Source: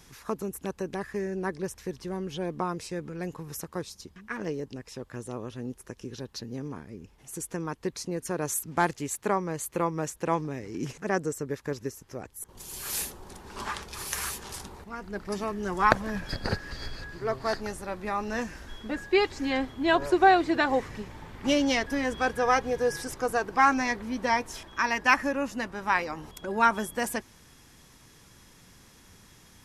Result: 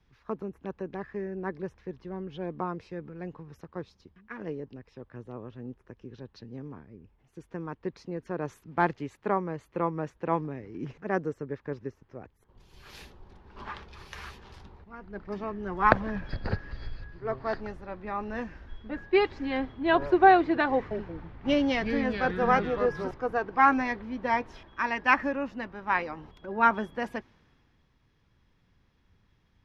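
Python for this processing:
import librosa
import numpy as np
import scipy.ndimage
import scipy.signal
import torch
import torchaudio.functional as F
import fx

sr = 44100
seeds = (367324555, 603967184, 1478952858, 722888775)

y = fx.echo_pitch(x, sr, ms=178, semitones=-4, count=2, db_per_echo=-6.0, at=(20.73, 23.11))
y = fx.air_absorb(y, sr, metres=300.0)
y = fx.band_widen(y, sr, depth_pct=40)
y = y * 10.0 ** (-1.0 / 20.0)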